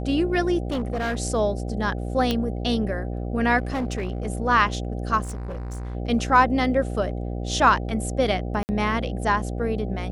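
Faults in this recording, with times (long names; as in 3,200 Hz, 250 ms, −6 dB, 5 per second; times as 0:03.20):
mains buzz 60 Hz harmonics 13 −29 dBFS
0:00.67–0:01.20: clipping −22 dBFS
0:02.31: click −10 dBFS
0:03.58–0:04.27: clipping −22.5 dBFS
0:05.23–0:05.95: clipping −28.5 dBFS
0:08.63–0:08.69: drop-out 59 ms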